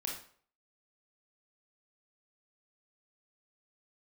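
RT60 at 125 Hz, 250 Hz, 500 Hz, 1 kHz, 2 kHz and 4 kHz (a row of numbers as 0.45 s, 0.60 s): 0.50 s, 0.45 s, 0.50 s, 0.50 s, 0.45 s, 0.40 s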